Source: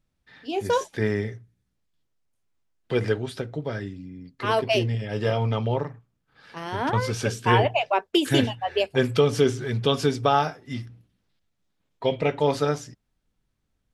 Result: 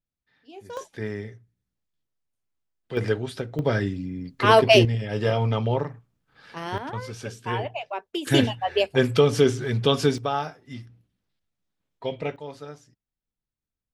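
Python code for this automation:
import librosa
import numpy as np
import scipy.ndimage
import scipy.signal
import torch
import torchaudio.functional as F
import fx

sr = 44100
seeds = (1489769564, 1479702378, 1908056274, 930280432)

y = fx.gain(x, sr, db=fx.steps((0.0, -16.0), (0.77, -7.0), (2.97, 0.0), (3.59, 7.5), (4.85, 1.0), (6.78, -9.0), (8.27, 1.5), (10.18, -6.0), (12.36, -16.0)))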